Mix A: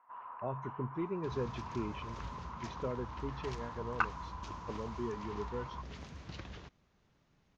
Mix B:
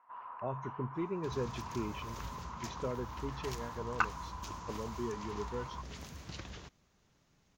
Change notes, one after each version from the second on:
master: remove air absorption 130 m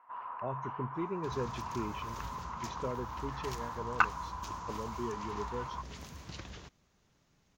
first sound +4.5 dB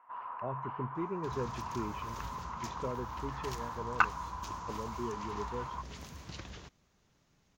speech: add air absorption 250 m

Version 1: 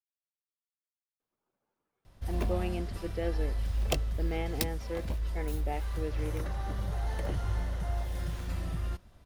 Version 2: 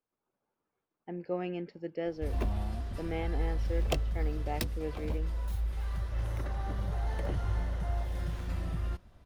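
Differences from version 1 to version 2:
speech: entry -1.20 s; master: add high shelf 4300 Hz -7 dB

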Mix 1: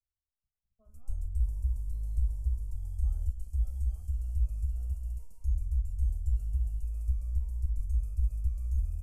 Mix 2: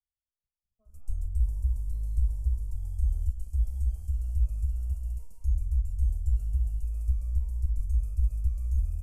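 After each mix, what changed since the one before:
speech -5.5 dB; background +3.0 dB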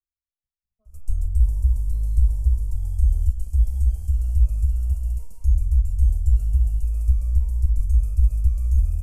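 background +8.5 dB

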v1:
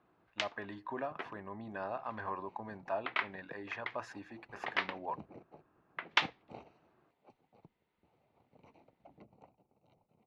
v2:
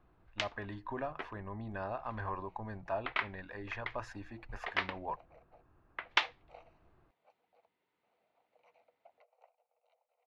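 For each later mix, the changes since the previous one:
second sound: add rippled Chebyshev high-pass 470 Hz, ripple 6 dB; master: remove HPF 180 Hz 12 dB/oct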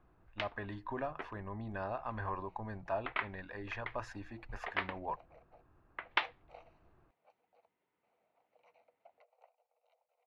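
first sound: add air absorption 260 m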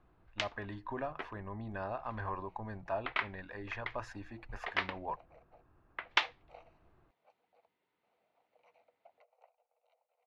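first sound: remove air absorption 260 m

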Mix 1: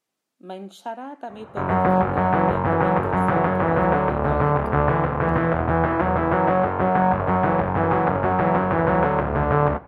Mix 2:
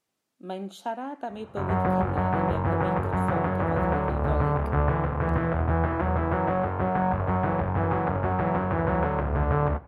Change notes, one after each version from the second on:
background -7.0 dB; master: add bell 76 Hz +9.5 dB 1.4 oct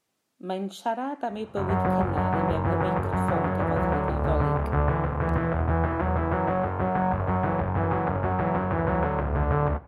speech +4.0 dB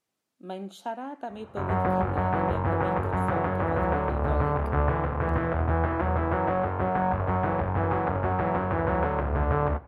speech -6.0 dB; background: add bell 160 Hz -5 dB 0.52 oct

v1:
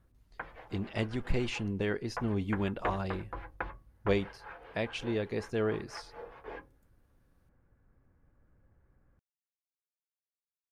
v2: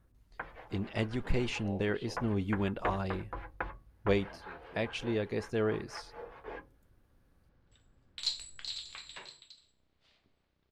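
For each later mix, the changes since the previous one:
second sound: unmuted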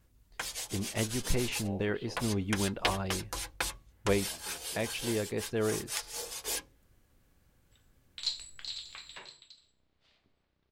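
first sound: remove LPF 1700 Hz 24 dB/oct

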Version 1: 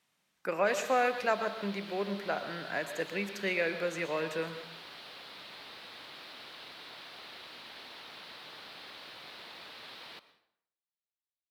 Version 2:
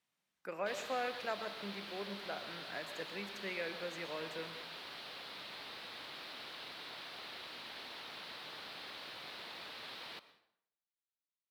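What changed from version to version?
speech -10.0 dB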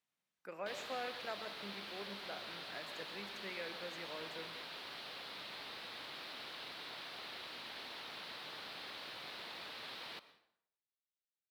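speech -5.0 dB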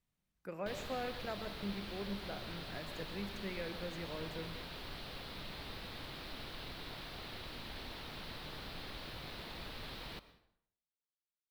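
master: remove weighting filter A

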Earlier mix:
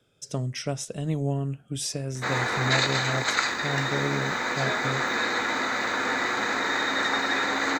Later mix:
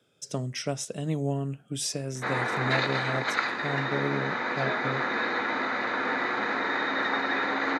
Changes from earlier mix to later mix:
background: add air absorption 250 m; master: add HPF 140 Hz 12 dB/oct

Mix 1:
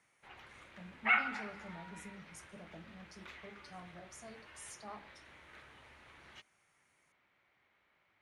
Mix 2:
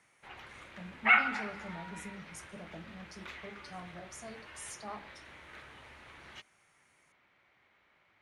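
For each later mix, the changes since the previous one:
speech +5.0 dB; background +5.5 dB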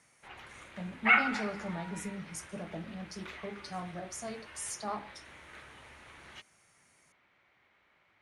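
speech +6.5 dB

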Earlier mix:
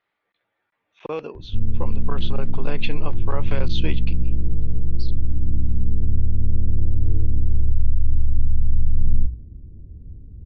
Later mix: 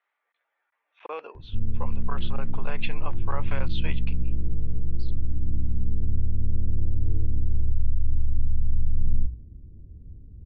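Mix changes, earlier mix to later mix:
speech: add BPF 730–2500 Hz; background -5.0 dB

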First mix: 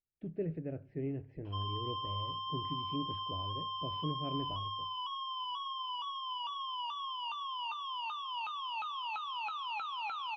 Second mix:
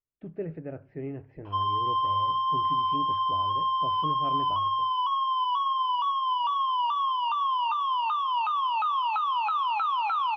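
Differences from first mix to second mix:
background: send on; master: add bell 1100 Hz +13.5 dB 1.5 oct

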